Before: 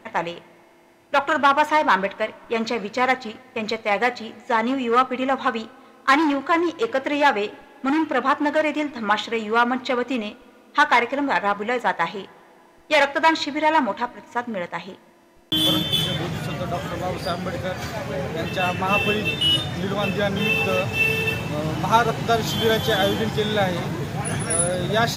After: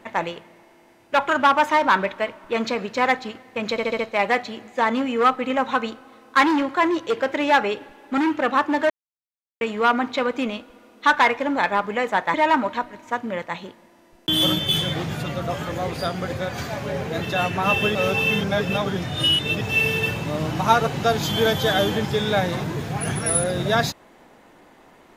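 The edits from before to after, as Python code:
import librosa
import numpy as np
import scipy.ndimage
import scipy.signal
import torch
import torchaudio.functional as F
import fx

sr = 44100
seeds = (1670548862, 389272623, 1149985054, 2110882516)

y = fx.edit(x, sr, fx.stutter(start_s=3.71, slice_s=0.07, count=5),
    fx.silence(start_s=8.62, length_s=0.71),
    fx.cut(start_s=12.06, length_s=1.52),
    fx.reverse_span(start_s=19.19, length_s=1.66), tone=tone)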